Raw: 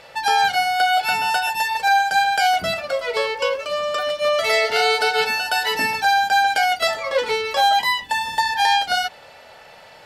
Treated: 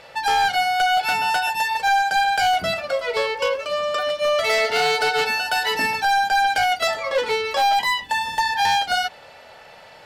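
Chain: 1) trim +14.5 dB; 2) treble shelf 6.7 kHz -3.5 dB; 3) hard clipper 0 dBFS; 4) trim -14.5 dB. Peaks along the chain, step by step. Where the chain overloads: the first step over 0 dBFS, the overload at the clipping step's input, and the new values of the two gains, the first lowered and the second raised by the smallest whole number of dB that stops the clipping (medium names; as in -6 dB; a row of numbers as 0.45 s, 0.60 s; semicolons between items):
+9.0 dBFS, +8.5 dBFS, 0.0 dBFS, -14.5 dBFS; step 1, 8.5 dB; step 1 +5.5 dB, step 4 -5.5 dB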